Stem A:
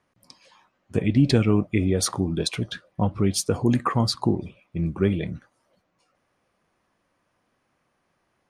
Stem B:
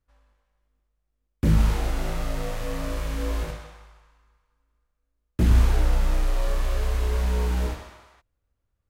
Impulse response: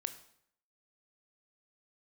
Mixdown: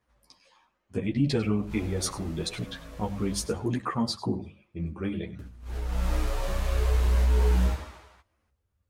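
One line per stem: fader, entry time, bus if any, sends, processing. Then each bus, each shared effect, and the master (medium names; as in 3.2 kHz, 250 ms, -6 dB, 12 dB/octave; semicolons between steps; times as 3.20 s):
-5.0 dB, 0.00 s, send -11 dB, echo send -15 dB, hum notches 50/100/150/200 Hz
-1.0 dB, 0.00 s, send -13 dB, no echo send, high-pass 64 Hz 12 dB/octave; bass shelf 92 Hz +9 dB; compressor with a negative ratio -20 dBFS, ratio -0.5; auto duck -22 dB, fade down 0.45 s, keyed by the first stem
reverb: on, RT60 0.65 s, pre-delay 18 ms
echo: delay 98 ms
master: three-phase chorus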